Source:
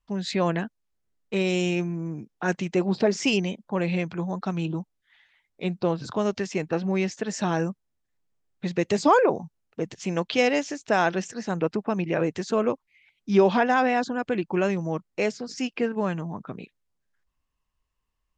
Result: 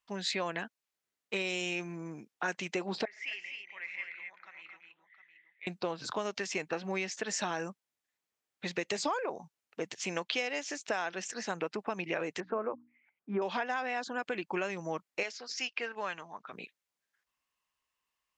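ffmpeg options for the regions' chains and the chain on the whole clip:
-filter_complex "[0:a]asettb=1/sr,asplit=3[s0][s1][s2];[s0]atrim=end=3.054[s3];[s1]atrim=start=3.05:end=5.67,asetpts=PTS-STARTPTS,afade=t=in:d=0.004:c=qsin,afade=t=out:st=2.616:d=0.004:c=qsin,bandpass=f=2000:t=q:w=8.3,aecho=1:1:73|113|229|259|711:0.112|0.15|0.251|0.501|0.2,atrim=end_sample=115542[s4];[s2]atrim=start=5.666[s5];[s3][s4]acrossfade=d=0.004:c1=hsin:c2=qsin[s6];[s6][s5]acrossfade=d=0.004:c1=qsin:c2=hsin,asettb=1/sr,asplit=3[s7][s8][s9];[s7]atrim=end=12.404[s10];[s8]atrim=start=12.4:end=13.42,asetpts=PTS-STARTPTS,afade=t=in:d=0.004:c=qsin,afade=t=out:st=1.016:d=0.004:c=qsin,lowpass=f=1500:w=0.5412,lowpass=f=1500:w=1.3066,bandreject=f=60:t=h:w=6,bandreject=f=120:t=h:w=6,bandreject=f=180:t=h:w=6,bandreject=f=240:t=h:w=6,bandreject=f=300:t=h:w=6[s11];[s9]atrim=start=13.416[s12];[s10][s11]acrossfade=d=0.004:c1=hsin:c2=qsin[s13];[s13][s12]acrossfade=d=0.004:c1=qsin:c2=hsin,asettb=1/sr,asplit=3[s14][s15][s16];[s14]atrim=end=15.234[s17];[s15]atrim=start=15.23:end=16.53,asetpts=PTS-STARTPTS,afade=t=in:d=0.004:c=qsin,afade=t=out:st=1.296:d=0.004:c=qsin,lowpass=f=6400:w=0.5412,lowpass=f=6400:w=1.3066,equalizer=f=140:w=0.31:g=-14[s18];[s16]atrim=start=16.526[s19];[s17][s18]acrossfade=d=0.004:c1=hsin:c2=qsin[s20];[s20][s19]acrossfade=d=0.004:c1=qsin:c2=hsin,highpass=f=920:p=1,equalizer=f=2300:t=o:w=0.77:g=2,acompressor=threshold=0.0282:ratio=10,volume=1.19"

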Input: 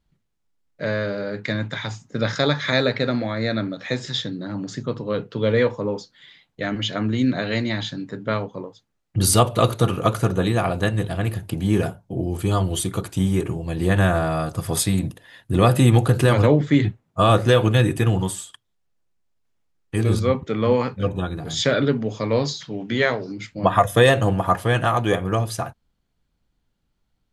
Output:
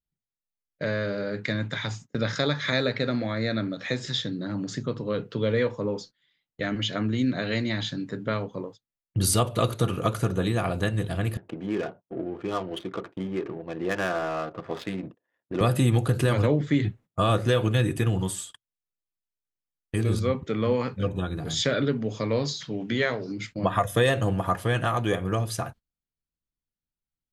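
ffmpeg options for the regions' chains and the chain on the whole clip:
-filter_complex "[0:a]asettb=1/sr,asplit=3[s0][s1][s2];[s0]atrim=end=11.374[s3];[s1]atrim=start=11.37:end=15.61,asetpts=PTS-STARTPTS,afade=t=in:d=0.004:c=qsin,afade=t=out:st=4.236:d=0.004:c=qsin,highpass=340,lowpass=3700,adynamicsmooth=sensitivity=3.5:basefreq=880[s4];[s2]atrim=start=15.606[s5];[s3][s4]acrossfade=d=0.004:c1=hsin:c2=qsin[s6];[s6][s5]acrossfade=d=0.004:c1=qsin:c2=hsin,agate=range=0.0794:threshold=0.00891:ratio=16:detection=peak,equalizer=f=840:t=o:w=0.77:g=-3.5,acompressor=threshold=0.0355:ratio=1.5"

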